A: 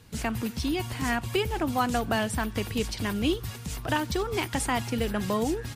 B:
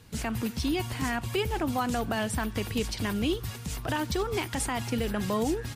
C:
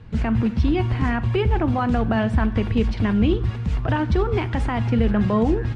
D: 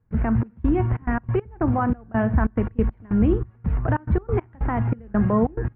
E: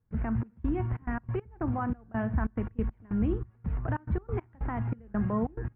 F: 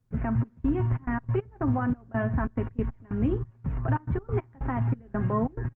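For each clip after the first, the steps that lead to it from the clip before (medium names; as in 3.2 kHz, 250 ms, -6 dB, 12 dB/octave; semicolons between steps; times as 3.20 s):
peak limiter -18 dBFS, peak gain reduction 5.5 dB
low-pass 2.3 kHz 12 dB/octave; bass shelf 140 Hz +11 dB; on a send at -13 dB: reverberation RT60 0.65 s, pre-delay 5 ms; on the sum: trim +5.5 dB
low-pass 1.8 kHz 24 dB/octave; trance gate ".xxx..xxx.x.x." 140 bpm -24 dB
dynamic bell 500 Hz, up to -3 dB, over -33 dBFS, Q 1.4; trim -8.5 dB
comb 7.5 ms, depth 52%; trim +3 dB; Opus 24 kbps 48 kHz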